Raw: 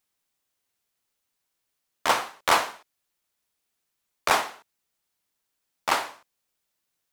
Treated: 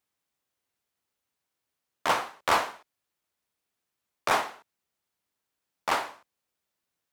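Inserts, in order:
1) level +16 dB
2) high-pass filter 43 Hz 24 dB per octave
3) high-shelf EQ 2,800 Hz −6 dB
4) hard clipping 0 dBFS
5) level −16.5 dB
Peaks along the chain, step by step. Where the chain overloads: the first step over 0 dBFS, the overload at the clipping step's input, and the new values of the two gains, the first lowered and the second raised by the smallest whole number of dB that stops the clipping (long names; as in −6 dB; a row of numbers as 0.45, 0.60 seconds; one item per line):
+10.0, +10.5, +8.5, 0.0, −16.5 dBFS
step 1, 8.5 dB
step 1 +7 dB, step 5 −7.5 dB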